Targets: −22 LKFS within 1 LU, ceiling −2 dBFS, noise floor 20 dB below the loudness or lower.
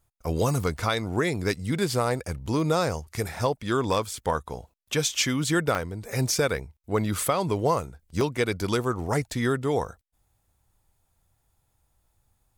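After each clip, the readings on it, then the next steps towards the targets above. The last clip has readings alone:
number of dropouts 2; longest dropout 2.0 ms; integrated loudness −27.0 LKFS; sample peak −13.0 dBFS; target loudness −22.0 LKFS
→ repair the gap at 0:05.75/0:08.21, 2 ms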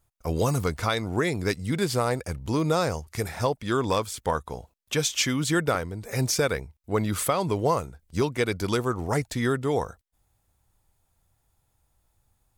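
number of dropouts 0; integrated loudness −27.0 LKFS; sample peak −13.0 dBFS; target loudness −22.0 LKFS
→ level +5 dB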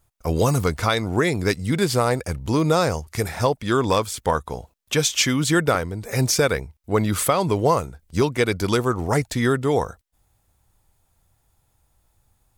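integrated loudness −22.0 LKFS; sample peak −8.0 dBFS; background noise floor −68 dBFS

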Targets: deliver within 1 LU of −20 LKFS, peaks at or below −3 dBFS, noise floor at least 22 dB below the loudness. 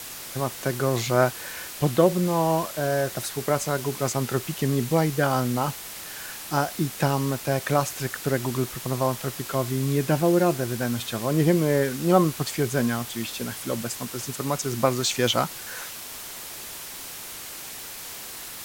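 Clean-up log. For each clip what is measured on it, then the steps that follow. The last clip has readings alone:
background noise floor −38 dBFS; target noise floor −48 dBFS; integrated loudness −25.5 LKFS; sample peak −5.5 dBFS; target loudness −20.0 LKFS
→ broadband denoise 10 dB, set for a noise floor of −38 dBFS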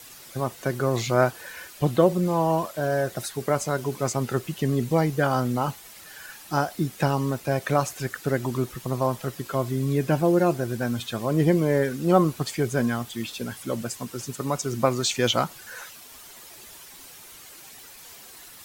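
background noise floor −46 dBFS; target noise floor −48 dBFS
→ broadband denoise 6 dB, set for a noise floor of −46 dBFS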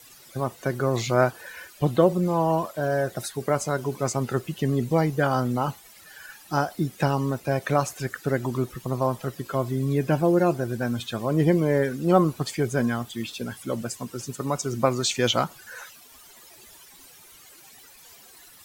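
background noise floor −50 dBFS; integrated loudness −25.5 LKFS; sample peak −5.5 dBFS; target loudness −20.0 LKFS
→ level +5.5 dB
brickwall limiter −3 dBFS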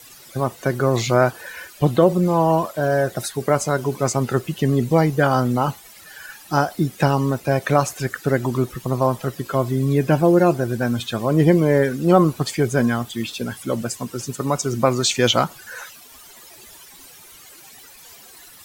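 integrated loudness −20.0 LKFS; sample peak −3.0 dBFS; background noise floor −45 dBFS

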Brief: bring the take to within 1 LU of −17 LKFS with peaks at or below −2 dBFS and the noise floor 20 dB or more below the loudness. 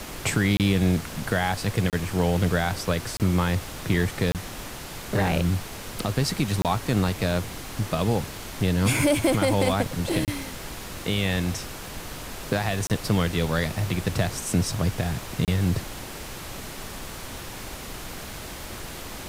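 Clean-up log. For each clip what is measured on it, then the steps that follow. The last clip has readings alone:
number of dropouts 8; longest dropout 28 ms; background noise floor −38 dBFS; target noise floor −46 dBFS; integrated loudness −26.0 LKFS; sample peak −10.0 dBFS; target loudness −17.0 LKFS
→ repair the gap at 0:00.57/0:01.90/0:03.17/0:04.32/0:06.62/0:10.25/0:12.87/0:15.45, 28 ms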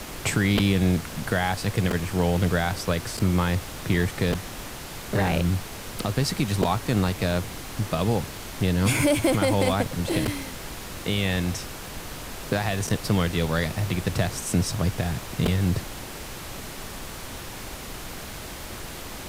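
number of dropouts 0; background noise floor −38 dBFS; target noise floor −46 dBFS
→ noise reduction from a noise print 8 dB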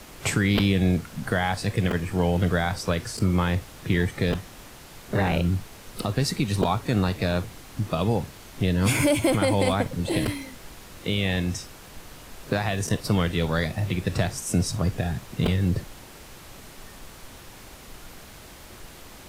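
background noise floor −45 dBFS; target noise floor −46 dBFS
→ noise reduction from a noise print 6 dB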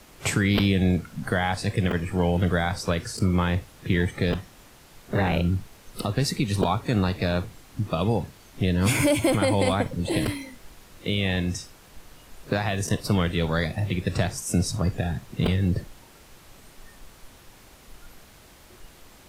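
background noise floor −51 dBFS; integrated loudness −25.5 LKFS; sample peak −7.5 dBFS; target loudness −17.0 LKFS
→ level +8.5 dB
brickwall limiter −2 dBFS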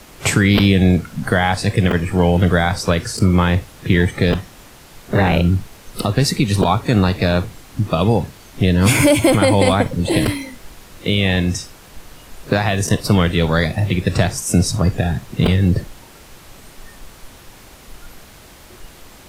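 integrated loudness −17.0 LKFS; sample peak −2.0 dBFS; background noise floor −43 dBFS

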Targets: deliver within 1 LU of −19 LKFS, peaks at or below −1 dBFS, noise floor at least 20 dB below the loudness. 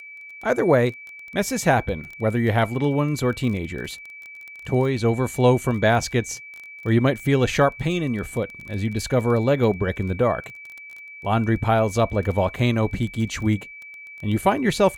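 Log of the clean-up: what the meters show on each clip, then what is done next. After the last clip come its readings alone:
crackle rate 18 per second; interfering tone 2,300 Hz; level of the tone −38 dBFS; integrated loudness −22.5 LKFS; sample peak −4.5 dBFS; target loudness −19.0 LKFS
→ click removal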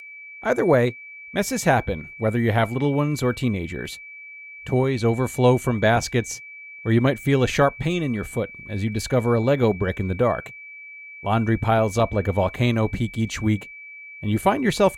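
crackle rate 0.20 per second; interfering tone 2,300 Hz; level of the tone −38 dBFS
→ notch filter 2,300 Hz, Q 30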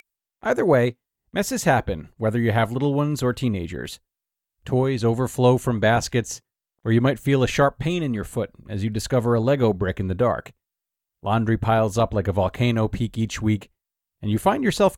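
interfering tone none found; integrated loudness −22.5 LKFS; sample peak −5.0 dBFS; target loudness −19.0 LKFS
→ level +3.5 dB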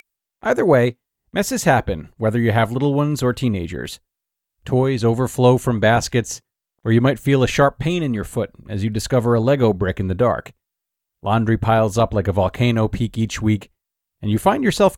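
integrated loudness −19.0 LKFS; sample peak −1.5 dBFS; background noise floor −83 dBFS

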